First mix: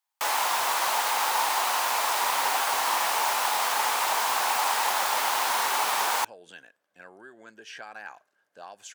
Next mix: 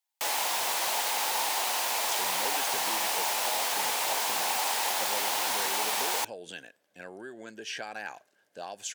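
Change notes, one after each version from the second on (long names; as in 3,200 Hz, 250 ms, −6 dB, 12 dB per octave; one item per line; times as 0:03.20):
speech +8.0 dB
master: add parametric band 1,200 Hz −10 dB 1.1 octaves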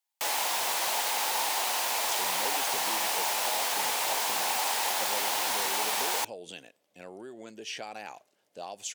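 speech: add parametric band 1,600 Hz −14.5 dB 0.24 octaves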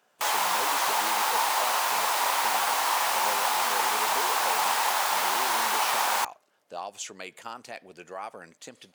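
speech: entry −1.85 s
master: add parametric band 1,200 Hz +10 dB 1.1 octaves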